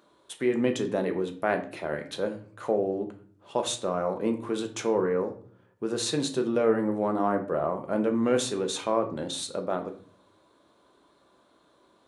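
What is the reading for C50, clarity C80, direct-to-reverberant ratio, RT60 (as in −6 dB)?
11.5 dB, 15.5 dB, 4.5 dB, 0.50 s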